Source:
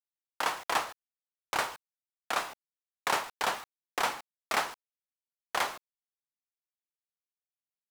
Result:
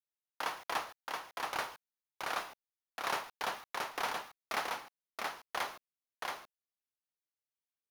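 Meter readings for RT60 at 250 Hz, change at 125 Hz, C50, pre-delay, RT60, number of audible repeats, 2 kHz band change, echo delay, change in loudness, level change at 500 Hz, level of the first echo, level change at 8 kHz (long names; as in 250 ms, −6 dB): no reverb audible, −5.0 dB, no reverb audible, no reverb audible, no reverb audible, 1, −4.5 dB, 676 ms, −6.0 dB, −5.0 dB, −3.0 dB, −7.5 dB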